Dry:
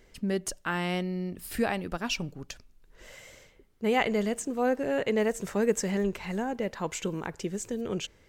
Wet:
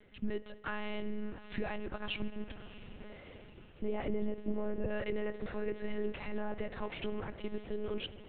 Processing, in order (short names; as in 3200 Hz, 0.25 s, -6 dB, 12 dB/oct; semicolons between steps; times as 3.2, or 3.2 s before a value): 2.21–4.9 tilt shelf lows +7.5 dB, about 770 Hz; limiter -23 dBFS, peak gain reduction 11.5 dB; diffused feedback echo 0.669 s, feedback 55%, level -15 dB; spring tank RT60 1.6 s, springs 59 ms, DRR 15 dB; monotone LPC vocoder at 8 kHz 210 Hz; gain -3.5 dB